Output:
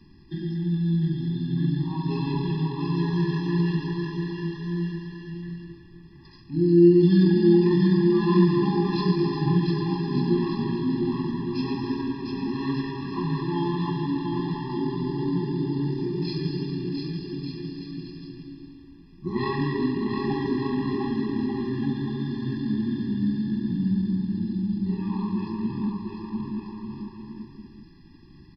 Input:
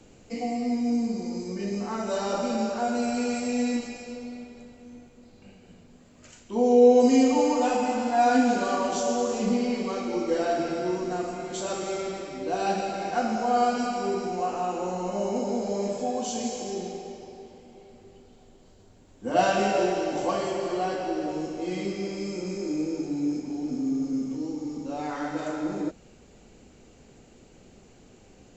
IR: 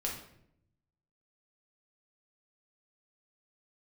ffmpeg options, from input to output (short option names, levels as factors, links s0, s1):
-filter_complex "[0:a]lowshelf=f=450:g=2.5,asetrate=31183,aresample=44100,atempo=1.41421,asplit=2[s0][s1];[s1]aecho=0:1:700|1190|1533|1773|1941:0.631|0.398|0.251|0.158|0.1[s2];[s0][s2]amix=inputs=2:normalize=0,afftfilt=real='re*eq(mod(floor(b*sr/1024/400),2),0)':imag='im*eq(mod(floor(b*sr/1024/400),2),0)':win_size=1024:overlap=0.75"